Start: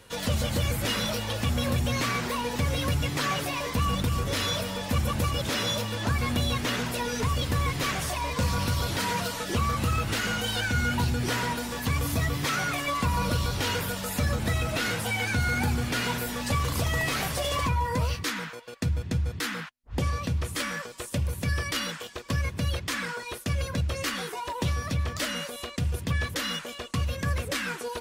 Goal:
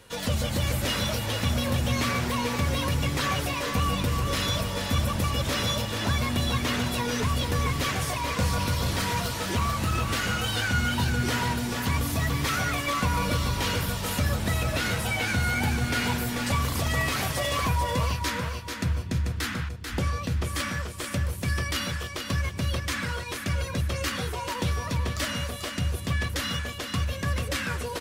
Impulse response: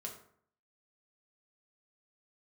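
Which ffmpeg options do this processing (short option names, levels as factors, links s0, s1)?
-filter_complex "[0:a]asettb=1/sr,asplit=3[s0][s1][s2];[s0]atrim=end=8.824[s3];[s1]atrim=start=8.82:end=10.09,asetpts=PTS-STARTPTS,afade=t=in:d=0.004:c=qsin,afade=t=out:st=1.266:d=0.004:c=qsin,aeval=exprs='clip(val(0),-1,0.0668)':c=same[s4];[s2]atrim=start=10.086[s5];[s3][s4]acrossfade=d=0.004:c1=hsin:c2=qsin[s6];[s6][s5]acrossfade=d=0.004:c1=qsin:c2=hsin,asplit=2[s7][s8];[s8]aecho=0:1:440|880|1320|1760:0.501|0.165|0.0546|0.018[s9];[s7][s9]amix=inputs=2:normalize=0"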